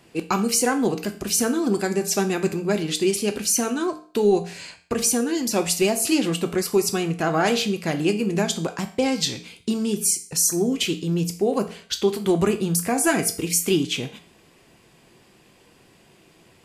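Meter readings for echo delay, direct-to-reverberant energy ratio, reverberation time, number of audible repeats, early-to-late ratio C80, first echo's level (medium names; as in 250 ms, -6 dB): no echo, 6.5 dB, 0.45 s, no echo, 17.0 dB, no echo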